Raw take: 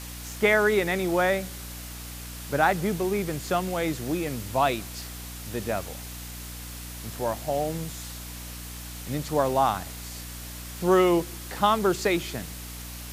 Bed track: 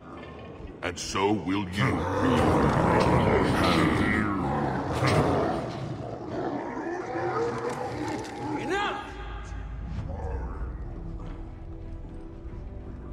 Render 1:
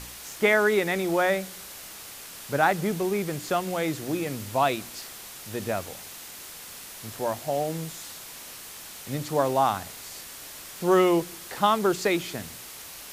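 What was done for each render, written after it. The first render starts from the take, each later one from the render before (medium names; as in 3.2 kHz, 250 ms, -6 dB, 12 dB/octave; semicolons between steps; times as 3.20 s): de-hum 60 Hz, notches 5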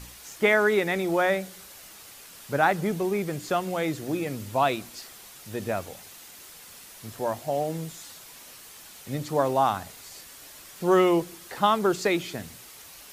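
noise reduction 6 dB, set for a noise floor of -43 dBFS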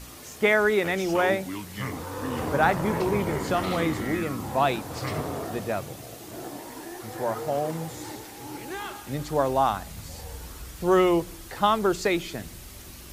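add bed track -7.5 dB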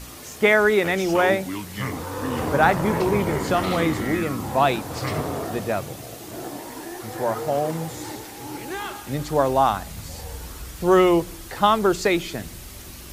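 trim +4 dB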